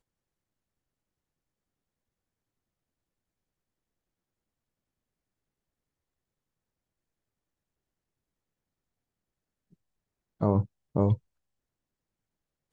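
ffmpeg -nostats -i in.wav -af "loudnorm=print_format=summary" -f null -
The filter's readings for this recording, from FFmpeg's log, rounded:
Input Integrated:    -28.7 LUFS
Input True Peak:     -10.9 dBTP
Input LRA:             3.4 LU
Input Threshold:     -39.4 LUFS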